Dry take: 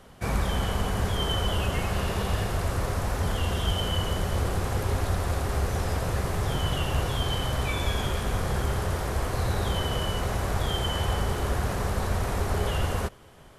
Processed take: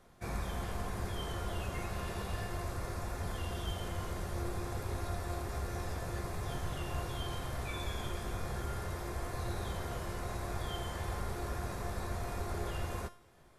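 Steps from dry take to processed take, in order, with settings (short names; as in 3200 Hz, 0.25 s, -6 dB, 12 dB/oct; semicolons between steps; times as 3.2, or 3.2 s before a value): notch 3000 Hz, Q 8.1; resonator 350 Hz, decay 0.46 s, harmonics all, mix 80%; gain +1.5 dB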